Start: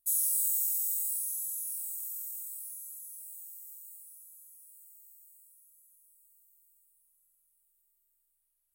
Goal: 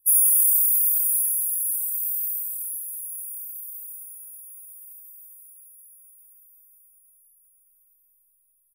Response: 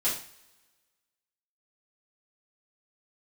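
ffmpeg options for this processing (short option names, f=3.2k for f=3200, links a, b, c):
-filter_complex "[0:a]firequalizer=gain_entry='entry(620,0);entry(1900,-12);entry(3400,-3);entry(5500,-20);entry(10000,10)':delay=0.05:min_phase=1,asplit=2[a][b];[1:a]atrim=start_sample=2205[c];[b][c]afir=irnorm=-1:irlink=0,volume=-15dB[d];[a][d]amix=inputs=2:normalize=0,afftfilt=real='re*eq(mod(floor(b*sr/1024/400),2),0)':imag='im*eq(mod(floor(b*sr/1024/400),2),0)':win_size=1024:overlap=0.75,volume=4dB"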